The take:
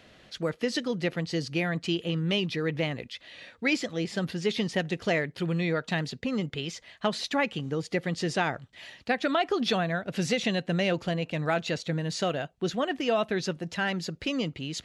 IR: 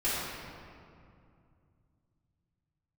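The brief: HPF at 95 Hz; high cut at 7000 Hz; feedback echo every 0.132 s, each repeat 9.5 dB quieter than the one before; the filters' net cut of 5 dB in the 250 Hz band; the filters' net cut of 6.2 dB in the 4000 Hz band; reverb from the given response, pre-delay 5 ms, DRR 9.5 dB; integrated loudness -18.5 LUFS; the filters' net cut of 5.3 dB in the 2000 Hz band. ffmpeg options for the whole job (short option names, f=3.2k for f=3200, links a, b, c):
-filter_complex "[0:a]highpass=95,lowpass=7k,equalizer=f=250:t=o:g=-7.5,equalizer=f=2k:t=o:g=-5,equalizer=f=4k:t=o:g=-6,aecho=1:1:132|264|396|528:0.335|0.111|0.0365|0.012,asplit=2[a][b];[1:a]atrim=start_sample=2205,adelay=5[c];[b][c]afir=irnorm=-1:irlink=0,volume=-19.5dB[d];[a][d]amix=inputs=2:normalize=0,volume=13.5dB"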